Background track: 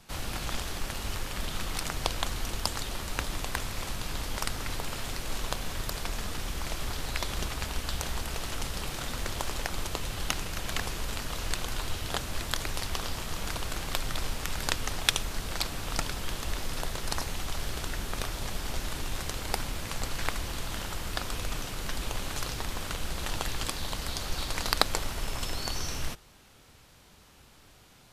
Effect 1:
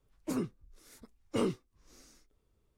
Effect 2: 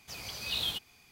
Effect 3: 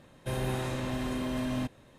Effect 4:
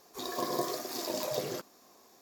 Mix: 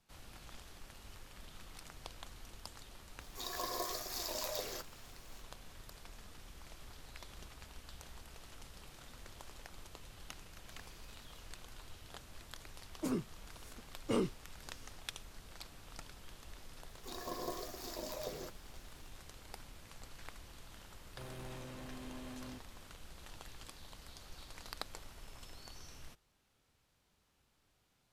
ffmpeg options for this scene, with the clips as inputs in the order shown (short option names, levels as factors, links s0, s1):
-filter_complex "[4:a]asplit=2[s0][s1];[0:a]volume=0.106[s2];[s0]highpass=f=1100:p=1[s3];[2:a]acompressor=threshold=0.00708:ratio=6:attack=3.2:release=140:knee=1:detection=peak[s4];[3:a]asoftclip=type=tanh:threshold=0.0168[s5];[s3]atrim=end=2.21,asetpts=PTS-STARTPTS,volume=0.794,afade=t=in:d=0.004:c=hsin,afade=t=out:st=2.206:d=0.004:c=hsin,adelay=141561S[s6];[s4]atrim=end=1.11,asetpts=PTS-STARTPTS,volume=0.133,afade=t=in:d=0.004:c=hsin,afade=t=out:st=1.106:d=0.004:c=hsin,adelay=10620[s7];[1:a]atrim=end=2.77,asetpts=PTS-STARTPTS,volume=0.75,afade=t=in:d=0.004:c=hsin,afade=t=out:st=2.766:d=0.004:c=hsin,adelay=12750[s8];[s1]atrim=end=2.21,asetpts=PTS-STARTPTS,volume=0.335,afade=t=in:d=0.004:c=hsin,afade=t=out:st=2.206:d=0.004:c=hsin,adelay=16890[s9];[s5]atrim=end=1.98,asetpts=PTS-STARTPTS,volume=0.299,afade=t=in:d=0.004:c=hsin,afade=t=out:st=1.976:d=0.004:c=hsin,adelay=20910[s10];[s2][s6][s7][s8][s9][s10]amix=inputs=6:normalize=0"